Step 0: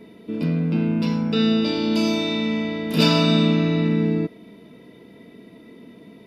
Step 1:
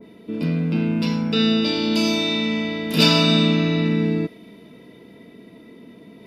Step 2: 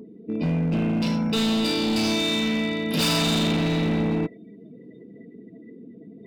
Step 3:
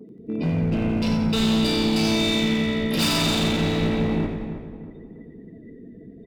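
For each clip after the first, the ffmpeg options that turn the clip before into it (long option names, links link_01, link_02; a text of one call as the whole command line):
ffmpeg -i in.wav -af "areverse,acompressor=mode=upward:threshold=-41dB:ratio=2.5,areverse,adynamicequalizer=threshold=0.0141:dfrequency=1700:dqfactor=0.7:tfrequency=1700:tqfactor=0.7:attack=5:release=100:ratio=0.375:range=2.5:mode=boostabove:tftype=highshelf" out.wav
ffmpeg -i in.wav -af "afftdn=noise_reduction=29:noise_floor=-40,acompressor=mode=upward:threshold=-39dB:ratio=2.5,asoftclip=type=hard:threshold=-20dB" out.wav
ffmpeg -i in.wav -filter_complex "[0:a]asplit=2[link_01][link_02];[link_02]asplit=7[link_03][link_04][link_05][link_06][link_07][link_08][link_09];[link_03]adelay=90,afreqshift=-62,volume=-8.5dB[link_10];[link_04]adelay=180,afreqshift=-124,volume=-13.2dB[link_11];[link_05]adelay=270,afreqshift=-186,volume=-18dB[link_12];[link_06]adelay=360,afreqshift=-248,volume=-22.7dB[link_13];[link_07]adelay=450,afreqshift=-310,volume=-27.4dB[link_14];[link_08]adelay=540,afreqshift=-372,volume=-32.2dB[link_15];[link_09]adelay=630,afreqshift=-434,volume=-36.9dB[link_16];[link_10][link_11][link_12][link_13][link_14][link_15][link_16]amix=inputs=7:normalize=0[link_17];[link_01][link_17]amix=inputs=2:normalize=0,agate=range=-11dB:threshold=-46dB:ratio=16:detection=peak,asplit=2[link_18][link_19];[link_19]adelay=318,lowpass=frequency=1600:poles=1,volume=-9dB,asplit=2[link_20][link_21];[link_21]adelay=318,lowpass=frequency=1600:poles=1,volume=0.39,asplit=2[link_22][link_23];[link_23]adelay=318,lowpass=frequency=1600:poles=1,volume=0.39,asplit=2[link_24][link_25];[link_25]adelay=318,lowpass=frequency=1600:poles=1,volume=0.39[link_26];[link_20][link_22][link_24][link_26]amix=inputs=4:normalize=0[link_27];[link_18][link_27]amix=inputs=2:normalize=0" out.wav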